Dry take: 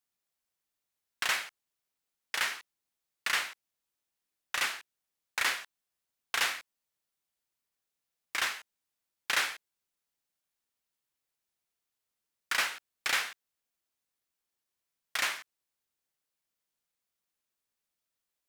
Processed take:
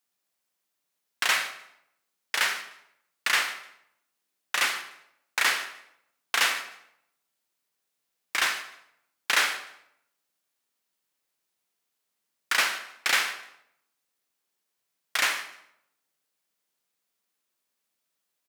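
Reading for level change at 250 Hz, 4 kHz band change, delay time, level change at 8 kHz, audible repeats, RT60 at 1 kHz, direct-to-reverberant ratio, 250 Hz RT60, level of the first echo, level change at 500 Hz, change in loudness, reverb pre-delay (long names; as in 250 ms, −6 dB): +6.0 dB, +6.0 dB, 151 ms, +6.0 dB, 2, 0.70 s, 8.0 dB, 0.80 s, −19.5 dB, +6.0 dB, +5.5 dB, 34 ms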